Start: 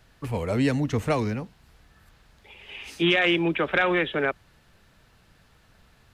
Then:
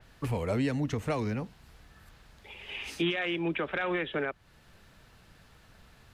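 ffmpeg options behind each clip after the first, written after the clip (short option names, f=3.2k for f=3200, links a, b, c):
-filter_complex "[0:a]asplit=2[a][b];[b]acompressor=threshold=-30dB:ratio=6,volume=-1dB[c];[a][c]amix=inputs=2:normalize=0,alimiter=limit=-16dB:level=0:latency=1:release=420,adynamicequalizer=threshold=0.00891:dfrequency=4000:dqfactor=0.7:tfrequency=4000:tqfactor=0.7:attack=5:release=100:ratio=0.375:range=2:mode=cutabove:tftype=highshelf,volume=-4.5dB"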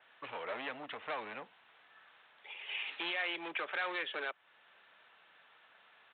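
-af "aresample=8000,volume=29.5dB,asoftclip=hard,volume=-29.5dB,aresample=44100,highpass=760"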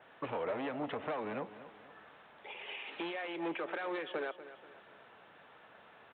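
-af "acompressor=threshold=-43dB:ratio=4,tiltshelf=f=970:g=9.5,aecho=1:1:241|482|723|964:0.2|0.0878|0.0386|0.017,volume=7dB"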